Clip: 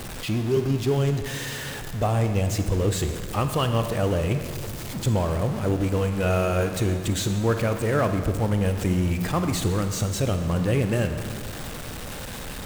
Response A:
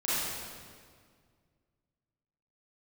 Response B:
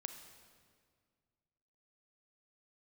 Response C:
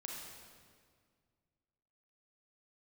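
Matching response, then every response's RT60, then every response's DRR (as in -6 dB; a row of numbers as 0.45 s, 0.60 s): B; 1.9 s, 1.9 s, 1.9 s; -11.5 dB, 7.0 dB, -2.0 dB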